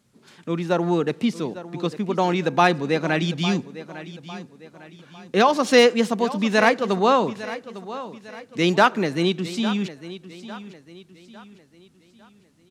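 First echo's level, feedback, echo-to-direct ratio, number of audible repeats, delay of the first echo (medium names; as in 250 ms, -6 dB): -15.0 dB, 40%, -14.0 dB, 3, 853 ms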